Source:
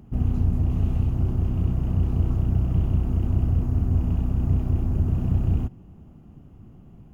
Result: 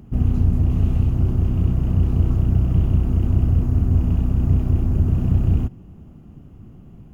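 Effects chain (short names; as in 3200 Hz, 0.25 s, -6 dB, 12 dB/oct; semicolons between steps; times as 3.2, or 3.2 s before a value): bell 820 Hz -3 dB 0.81 oct; gain +4.5 dB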